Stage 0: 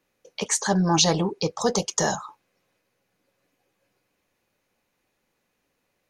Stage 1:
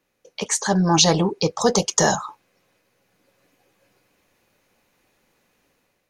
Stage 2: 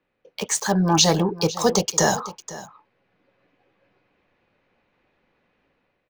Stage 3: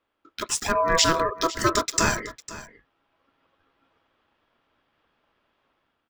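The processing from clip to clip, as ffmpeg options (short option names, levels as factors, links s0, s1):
-af "dynaudnorm=f=570:g=3:m=2.51,volume=1.12"
-filter_complex "[0:a]acrossover=split=330|3700[s0][s1][s2];[s2]acrusher=bits=5:mix=0:aa=0.000001[s3];[s0][s1][s3]amix=inputs=3:normalize=0,aecho=1:1:503:0.141,volume=0.891"
-af "aeval=exprs='val(0)*sin(2*PI*820*n/s)':c=same"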